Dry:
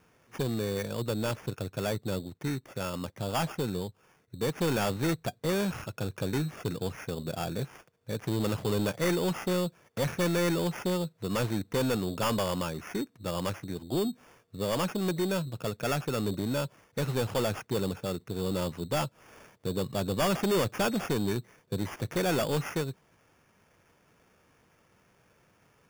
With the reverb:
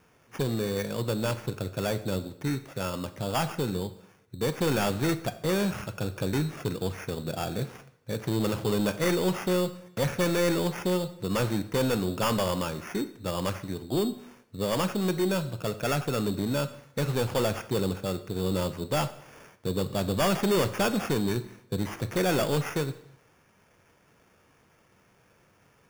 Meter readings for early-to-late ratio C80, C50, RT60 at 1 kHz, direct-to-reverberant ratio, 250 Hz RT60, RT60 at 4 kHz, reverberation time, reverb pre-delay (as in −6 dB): 16.5 dB, 14.5 dB, 0.70 s, 10.5 dB, 0.70 s, 0.65 s, 0.70 s, 6 ms